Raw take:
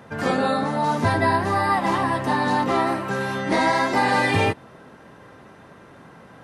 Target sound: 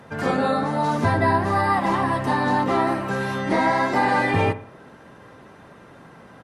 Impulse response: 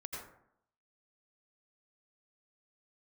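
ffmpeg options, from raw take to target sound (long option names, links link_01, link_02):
-filter_complex "[0:a]acrossover=split=2300[link_01][link_02];[link_01]aecho=1:1:61|122|183|244:0.2|0.0858|0.0369|0.0159[link_03];[link_02]alimiter=level_in=6.5dB:limit=-24dB:level=0:latency=1:release=419,volume=-6.5dB[link_04];[link_03][link_04]amix=inputs=2:normalize=0" -ar 48000 -c:a libopus -b:a 48k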